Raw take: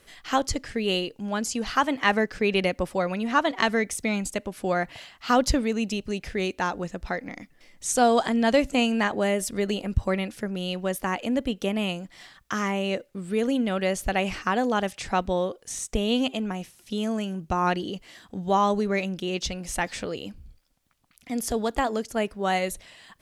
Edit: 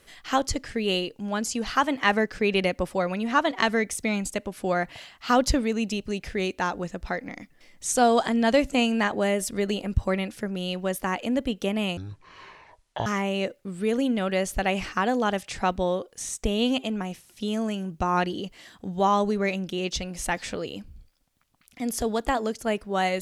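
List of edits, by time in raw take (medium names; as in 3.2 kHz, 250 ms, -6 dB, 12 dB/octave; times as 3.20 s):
11.97–12.56 s: speed 54%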